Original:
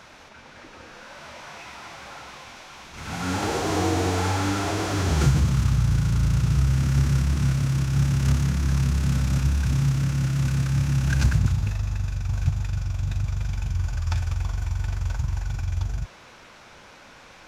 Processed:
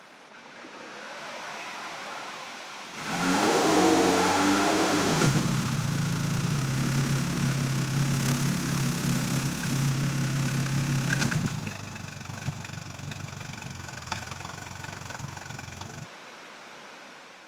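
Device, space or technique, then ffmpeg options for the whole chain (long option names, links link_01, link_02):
video call: -filter_complex "[0:a]asettb=1/sr,asplit=3[link_01][link_02][link_03];[link_01]atrim=end=8.124[link_04];[link_02]atrim=start=8.12:end=9.89,asetpts=PTS-STARTPTS,afade=type=in:duration=0.004:curve=qsin,afade=type=out:start_time=1.766:duration=0.004:curve=qsin,highshelf=frequency=8500:gain=5[link_05];[link_03]atrim=start=9.886[link_06];[link_04][link_05]acrossfade=duration=0.004:curve1=hsin:curve2=qsin[link_07];[link_07][link_06]acrossfade=duration=0.004:curve1=qsin:curve2=hsin,highpass=frequency=170:width=0.5412,highpass=frequency=170:width=1.3066,dynaudnorm=framelen=460:gausssize=3:maxgain=3.5dB" -ar 48000 -c:a libopus -b:a 32k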